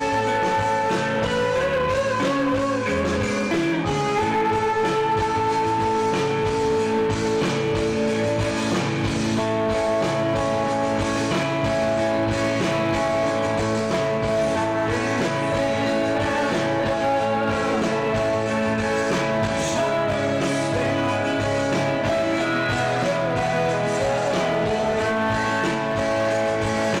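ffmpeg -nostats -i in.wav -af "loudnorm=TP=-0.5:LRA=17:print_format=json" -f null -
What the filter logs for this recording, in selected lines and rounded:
"input_i" : "-22.0",
"input_tp" : "-16.2",
"input_lra" : "0.5",
"input_thresh" : "-32.0",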